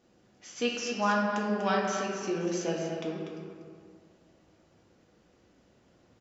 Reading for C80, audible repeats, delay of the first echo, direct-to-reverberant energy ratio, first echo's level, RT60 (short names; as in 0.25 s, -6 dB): 1.5 dB, 1, 0.243 s, -3.0 dB, -8.5 dB, 2.1 s